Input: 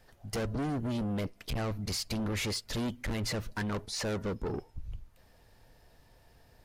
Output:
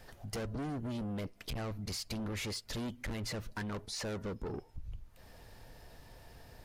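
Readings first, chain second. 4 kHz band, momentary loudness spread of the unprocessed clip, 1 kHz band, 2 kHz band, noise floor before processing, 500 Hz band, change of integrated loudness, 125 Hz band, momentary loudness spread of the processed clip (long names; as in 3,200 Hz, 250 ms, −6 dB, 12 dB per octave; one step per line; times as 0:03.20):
−4.5 dB, 6 LU, −5.0 dB, −5.0 dB, −62 dBFS, −5.5 dB, −5.5 dB, −5.0 dB, 18 LU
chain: downward compressor 2 to 1, threshold −54 dBFS, peak gain reduction 12.5 dB
level +6.5 dB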